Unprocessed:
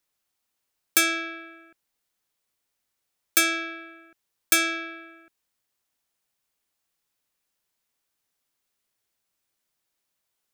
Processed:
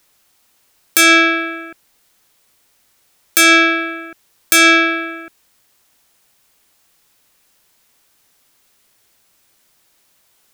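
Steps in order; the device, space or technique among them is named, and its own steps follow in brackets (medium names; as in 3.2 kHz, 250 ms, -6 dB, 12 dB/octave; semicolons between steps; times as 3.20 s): loud club master (compression 2.5:1, threshold -24 dBFS, peak gain reduction 6.5 dB; hard clipper -12 dBFS, distortion -27 dB; loudness maximiser +22 dB); trim -1 dB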